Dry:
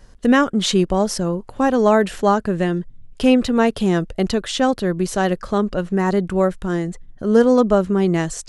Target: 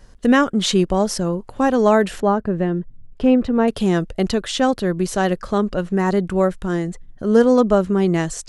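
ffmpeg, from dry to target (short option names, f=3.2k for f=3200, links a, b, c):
-filter_complex "[0:a]asettb=1/sr,asplit=3[a][b][c];[a]atrim=end=2.204[d];[b]atrim=start=2.2:end=3.68,asetpts=PTS-STARTPTS,afade=t=in:d=0.004:c=qsin,afade=t=out:st=1.476:d=0.004:c=qsin,lowpass=f=1k:p=1[e];[c]atrim=start=3.676[f];[d][e]acrossfade=d=0.004:c1=hsin:c2=qsin[g];[g][f]acrossfade=d=0.004:c1=qsin:c2=hsin"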